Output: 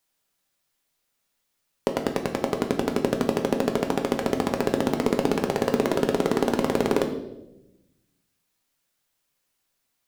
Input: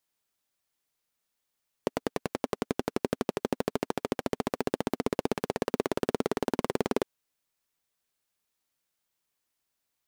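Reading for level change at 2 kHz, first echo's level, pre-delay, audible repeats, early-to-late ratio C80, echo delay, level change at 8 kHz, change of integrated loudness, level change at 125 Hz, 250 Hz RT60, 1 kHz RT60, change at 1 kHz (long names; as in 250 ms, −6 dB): +6.5 dB, no echo audible, 4 ms, no echo audible, 11.5 dB, no echo audible, +6.0 dB, +7.0 dB, +7.5 dB, 1.4 s, 0.75 s, +6.5 dB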